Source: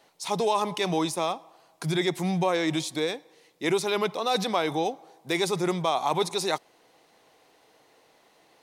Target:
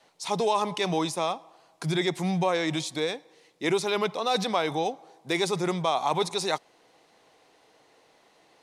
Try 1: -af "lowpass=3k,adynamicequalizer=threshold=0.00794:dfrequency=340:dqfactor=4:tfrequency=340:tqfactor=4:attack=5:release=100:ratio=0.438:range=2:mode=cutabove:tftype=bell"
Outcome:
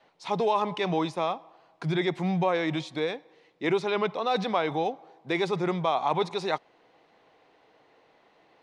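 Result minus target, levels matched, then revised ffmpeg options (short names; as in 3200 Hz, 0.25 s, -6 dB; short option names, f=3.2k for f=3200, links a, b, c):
8000 Hz band -14.0 dB
-af "lowpass=10k,adynamicequalizer=threshold=0.00794:dfrequency=340:dqfactor=4:tfrequency=340:tqfactor=4:attack=5:release=100:ratio=0.438:range=2:mode=cutabove:tftype=bell"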